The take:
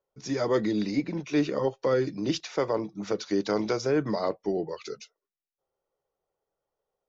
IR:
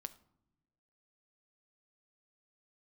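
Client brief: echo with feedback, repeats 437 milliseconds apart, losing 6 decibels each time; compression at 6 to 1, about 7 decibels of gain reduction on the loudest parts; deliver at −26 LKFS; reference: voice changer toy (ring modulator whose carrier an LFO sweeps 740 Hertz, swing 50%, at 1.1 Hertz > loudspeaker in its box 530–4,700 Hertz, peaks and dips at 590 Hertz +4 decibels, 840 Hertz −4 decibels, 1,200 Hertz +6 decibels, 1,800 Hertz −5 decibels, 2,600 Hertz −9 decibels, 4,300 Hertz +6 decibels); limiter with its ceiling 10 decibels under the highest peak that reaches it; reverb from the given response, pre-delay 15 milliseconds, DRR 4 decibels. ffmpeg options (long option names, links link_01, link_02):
-filter_complex "[0:a]acompressor=threshold=-28dB:ratio=6,alimiter=level_in=3.5dB:limit=-24dB:level=0:latency=1,volume=-3.5dB,aecho=1:1:437|874|1311|1748|2185|2622:0.501|0.251|0.125|0.0626|0.0313|0.0157,asplit=2[link_01][link_02];[1:a]atrim=start_sample=2205,adelay=15[link_03];[link_02][link_03]afir=irnorm=-1:irlink=0,volume=0dB[link_04];[link_01][link_04]amix=inputs=2:normalize=0,aeval=exprs='val(0)*sin(2*PI*740*n/s+740*0.5/1.1*sin(2*PI*1.1*n/s))':channel_layout=same,highpass=530,equalizer=frequency=590:width_type=q:width=4:gain=4,equalizer=frequency=840:width_type=q:width=4:gain=-4,equalizer=frequency=1200:width_type=q:width=4:gain=6,equalizer=frequency=1800:width_type=q:width=4:gain=-5,equalizer=frequency=2600:width_type=q:width=4:gain=-9,equalizer=frequency=4300:width_type=q:width=4:gain=6,lowpass=frequency=4700:width=0.5412,lowpass=frequency=4700:width=1.3066,volume=11.5dB"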